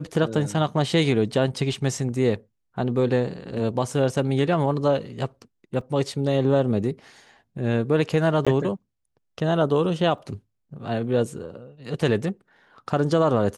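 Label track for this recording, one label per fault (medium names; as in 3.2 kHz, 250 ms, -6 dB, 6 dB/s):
5.810000	5.810000	dropout 3.1 ms
8.450000	8.470000	dropout 16 ms
10.180000	10.180000	dropout 2.2 ms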